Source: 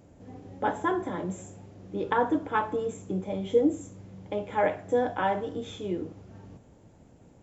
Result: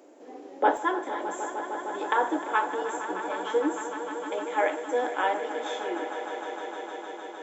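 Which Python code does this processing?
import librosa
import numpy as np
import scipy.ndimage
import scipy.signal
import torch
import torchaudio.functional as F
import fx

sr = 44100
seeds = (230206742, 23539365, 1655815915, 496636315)

y = scipy.signal.sosfilt(scipy.signal.cheby1(4, 1.0, 310.0, 'highpass', fs=sr, output='sos'), x)
y = fx.peak_eq(y, sr, hz=390.0, db=fx.steps((0.0, 2.0), (0.77, -7.5)), octaves=2.5)
y = fx.echo_swell(y, sr, ms=153, loudest=5, wet_db=-13)
y = F.gain(torch.from_numpy(y), 5.0).numpy()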